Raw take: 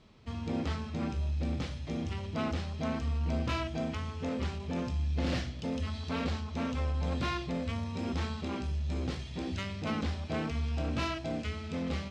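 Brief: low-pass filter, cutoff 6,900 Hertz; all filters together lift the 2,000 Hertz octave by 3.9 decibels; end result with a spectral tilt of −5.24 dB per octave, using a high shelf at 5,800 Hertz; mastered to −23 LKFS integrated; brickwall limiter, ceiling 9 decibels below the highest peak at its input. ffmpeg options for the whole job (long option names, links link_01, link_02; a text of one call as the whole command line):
ffmpeg -i in.wav -af "lowpass=6900,equalizer=frequency=2000:width_type=o:gain=4,highshelf=frequency=5800:gain=7,volume=14dB,alimiter=limit=-13.5dB:level=0:latency=1" out.wav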